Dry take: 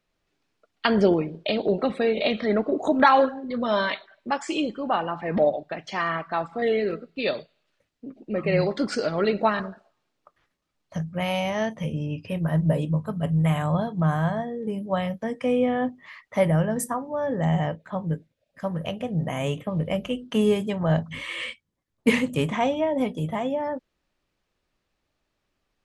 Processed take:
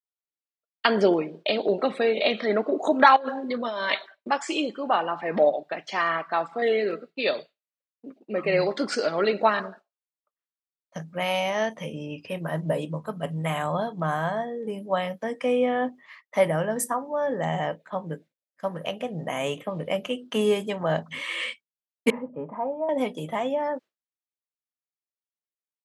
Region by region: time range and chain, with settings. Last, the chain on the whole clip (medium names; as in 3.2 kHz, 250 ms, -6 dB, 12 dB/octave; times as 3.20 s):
3.16–4.28 s: band-stop 1.3 kHz, Q 27 + compressor with a negative ratio -29 dBFS
22.10–22.89 s: four-pole ladder low-pass 1.1 kHz, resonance 35% + comb of notches 370 Hz
whole clip: expander -38 dBFS; Bessel high-pass 350 Hz, order 2; trim +2 dB